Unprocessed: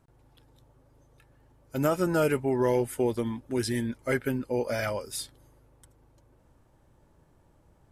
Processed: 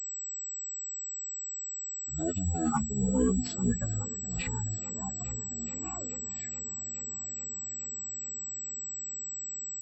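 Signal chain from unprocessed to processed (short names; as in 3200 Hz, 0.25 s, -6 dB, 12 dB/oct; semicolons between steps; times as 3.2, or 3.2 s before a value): per-bin expansion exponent 2; Doppler pass-by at 2.76, 15 m/s, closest 8.1 m; notches 50/100/150/200/250/300/350/400/450/500 Hz; reverb removal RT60 1 s; transient shaper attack -10 dB, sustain +10 dB; time stretch by phase-locked vocoder 0.62×; multi-head echo 0.212 s, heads all three, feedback 66%, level -22.5 dB; speed mistake 15 ips tape played at 7.5 ips; pulse-width modulation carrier 7800 Hz; gain +5 dB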